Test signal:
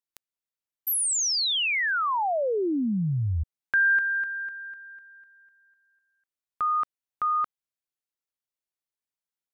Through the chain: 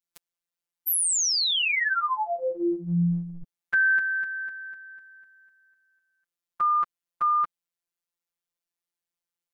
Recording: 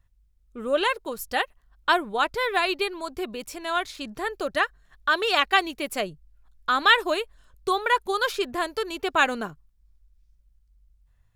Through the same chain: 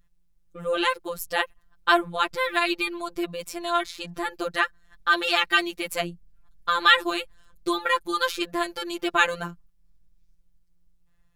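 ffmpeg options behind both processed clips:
ffmpeg -i in.wav -af "adynamicequalizer=threshold=0.0158:dfrequency=690:dqfactor=1.1:tfrequency=690:tqfactor=1.1:attack=5:release=100:ratio=0.375:range=3:mode=cutabove:tftype=bell,afftfilt=real='hypot(re,im)*cos(PI*b)':imag='0':win_size=1024:overlap=0.75,volume=4.5dB" out.wav

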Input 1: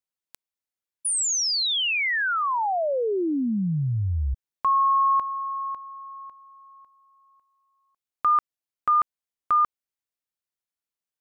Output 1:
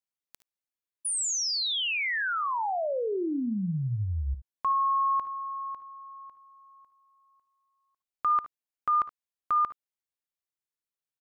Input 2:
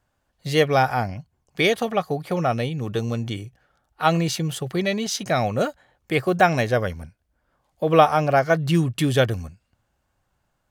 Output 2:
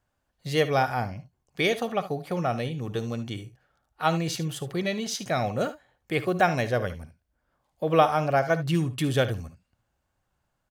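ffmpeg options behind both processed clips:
ffmpeg -i in.wav -af "aecho=1:1:57|73:0.15|0.168,volume=-5dB" out.wav

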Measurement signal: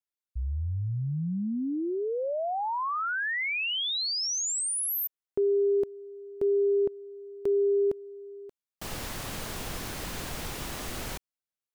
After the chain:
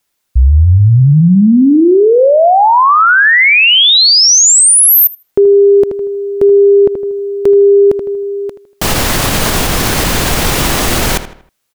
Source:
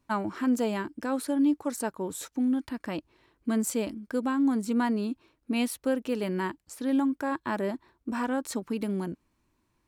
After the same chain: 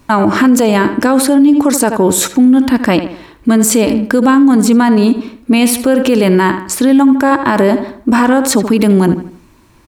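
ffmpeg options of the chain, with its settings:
ffmpeg -i in.wav -filter_complex "[0:a]asplit=2[link_01][link_02];[link_02]adelay=79,lowpass=frequency=3700:poles=1,volume=-13.5dB,asplit=2[link_03][link_04];[link_04]adelay=79,lowpass=frequency=3700:poles=1,volume=0.4,asplit=2[link_05][link_06];[link_06]adelay=79,lowpass=frequency=3700:poles=1,volume=0.4,asplit=2[link_07][link_08];[link_08]adelay=79,lowpass=frequency=3700:poles=1,volume=0.4[link_09];[link_01][link_03][link_05][link_07][link_09]amix=inputs=5:normalize=0,alimiter=level_in=27.5dB:limit=-1dB:release=50:level=0:latency=1,volume=-1.5dB" out.wav

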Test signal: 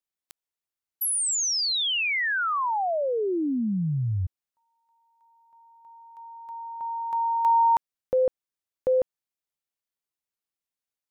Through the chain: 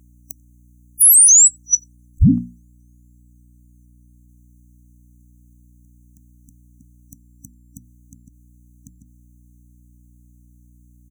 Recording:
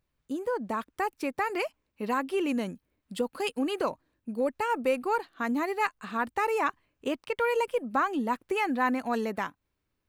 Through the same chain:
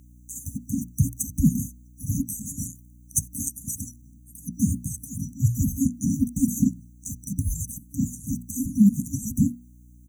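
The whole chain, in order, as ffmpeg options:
ffmpeg -i in.wav -filter_complex "[0:a]afftfilt=real='real(if(between(b,1,1012),(2*floor((b-1)/92)+1)*92-b,b),0)':imag='imag(if(between(b,1,1012),(2*floor((b-1)/92)+1)*92-b,b),0)*if(between(b,1,1012),-1,1)':win_size=2048:overlap=0.75,acompressor=threshold=-28dB:ratio=6:attack=0.2:release=250:knee=1:detection=peak,highshelf=frequency=5900:gain=-5,bandreject=frequency=60:width_type=h:width=6,bandreject=frequency=120:width_type=h:width=6,bandreject=frequency=180:width_type=h:width=6,bandreject=frequency=240:width_type=h:width=6,bandreject=frequency=300:width_type=h:width=6,bandreject=frequency=360:width_type=h:width=6,bandreject=frequency=420:width_type=h:width=6,bandreject=frequency=480:width_type=h:width=6,afftfilt=real='re*(1-between(b*sr/4096,290,5900))':imag='im*(1-between(b*sr/4096,290,5900))':win_size=4096:overlap=0.75,highpass=92,lowshelf=frequency=160:gain=6,asplit=2[link_01][link_02];[link_02]adelay=90,highpass=300,lowpass=3400,asoftclip=type=hard:threshold=-30.5dB,volume=-24dB[link_03];[link_01][link_03]amix=inputs=2:normalize=0,aeval=exprs='val(0)+0.000141*(sin(2*PI*60*n/s)+sin(2*PI*2*60*n/s)/2+sin(2*PI*3*60*n/s)/3+sin(2*PI*4*60*n/s)/4+sin(2*PI*5*60*n/s)/5)':channel_layout=same,alimiter=level_in=32.5dB:limit=-1dB:release=50:level=0:latency=1,volume=-4.5dB" out.wav

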